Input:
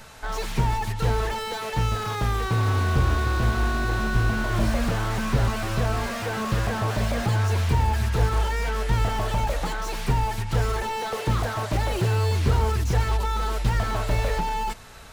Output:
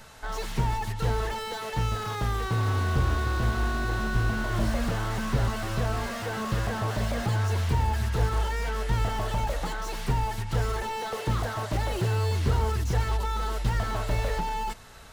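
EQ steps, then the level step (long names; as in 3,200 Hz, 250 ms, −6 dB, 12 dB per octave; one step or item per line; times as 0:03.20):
notch filter 2,400 Hz, Q 20
−3.5 dB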